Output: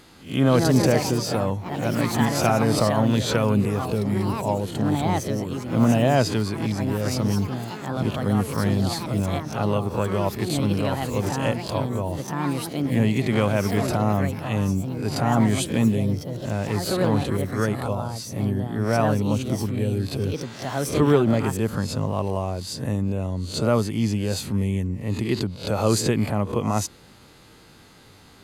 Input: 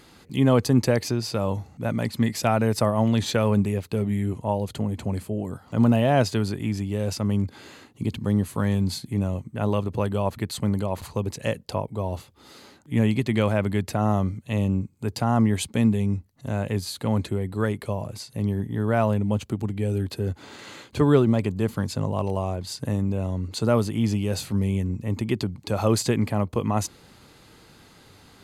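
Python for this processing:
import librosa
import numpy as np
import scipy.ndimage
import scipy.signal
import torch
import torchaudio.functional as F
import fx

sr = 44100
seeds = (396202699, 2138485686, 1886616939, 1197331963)

y = fx.spec_swells(x, sr, rise_s=0.36)
y = fx.echo_pitch(y, sr, ms=246, semitones=4, count=3, db_per_echo=-6.0)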